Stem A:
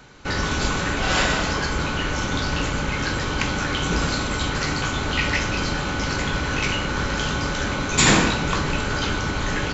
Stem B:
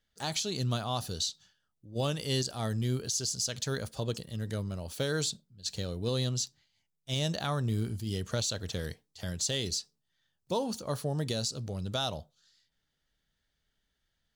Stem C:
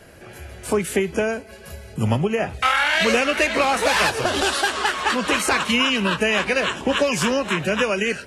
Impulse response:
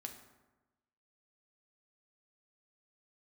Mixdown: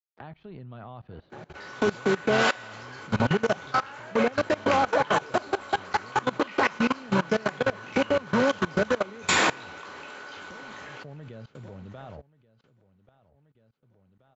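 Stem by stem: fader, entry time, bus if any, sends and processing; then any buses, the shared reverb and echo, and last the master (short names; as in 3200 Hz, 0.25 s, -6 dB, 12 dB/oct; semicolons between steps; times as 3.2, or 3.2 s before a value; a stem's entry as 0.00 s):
-2.0 dB, 1.30 s, send -4 dB, echo send -22 dB, HPF 490 Hz 12 dB/oct
-1.5 dB, 0.00 s, no send, echo send -10.5 dB, crossover distortion -53 dBFS; LPF 2500 Hz 24 dB/oct; three-band squash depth 100%
+0.5 dB, 1.10 s, no send, no echo send, Chebyshev band-pass 140–1100 Hz, order 2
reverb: on, RT60 1.1 s, pre-delay 4 ms
echo: feedback echo 1.132 s, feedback 19%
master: high shelf 4200 Hz -10.5 dB; level quantiser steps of 21 dB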